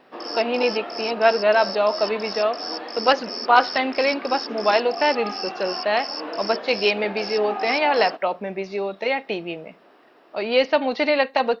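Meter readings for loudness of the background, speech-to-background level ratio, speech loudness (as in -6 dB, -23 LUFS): -30.0 LUFS, 8.0 dB, -22.0 LUFS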